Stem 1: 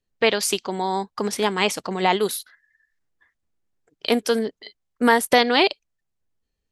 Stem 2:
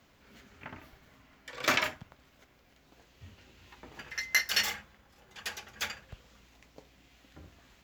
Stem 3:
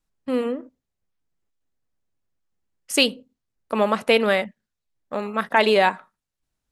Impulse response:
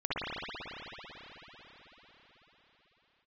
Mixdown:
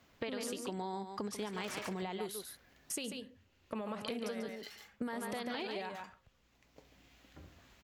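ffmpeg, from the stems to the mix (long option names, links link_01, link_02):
-filter_complex "[0:a]volume=-10dB,asplit=2[link_01][link_02];[link_02]volume=-10dB[link_03];[1:a]alimiter=limit=-18.5dB:level=0:latency=1:release=295,asoftclip=type=tanh:threshold=-34dB,volume=-2.5dB,asplit=2[link_04][link_05];[link_05]volume=-15dB[link_06];[2:a]agate=range=-33dB:threshold=-39dB:ratio=3:detection=peak,alimiter=limit=-11.5dB:level=0:latency=1,acompressor=threshold=-24dB:ratio=6,volume=-7dB,asplit=3[link_07][link_08][link_09];[link_08]volume=-8.5dB[link_10];[link_09]apad=whole_len=345411[link_11];[link_04][link_11]sidechaincompress=threshold=-57dB:ratio=10:attack=9.4:release=598[link_12];[link_01][link_07]amix=inputs=2:normalize=0,equalizer=frequency=82:width=0.52:gain=11,alimiter=limit=-21.5dB:level=0:latency=1:release=147,volume=0dB[link_13];[link_03][link_06][link_10]amix=inputs=3:normalize=0,aecho=0:1:141:1[link_14];[link_12][link_13][link_14]amix=inputs=3:normalize=0,acompressor=threshold=-36dB:ratio=10"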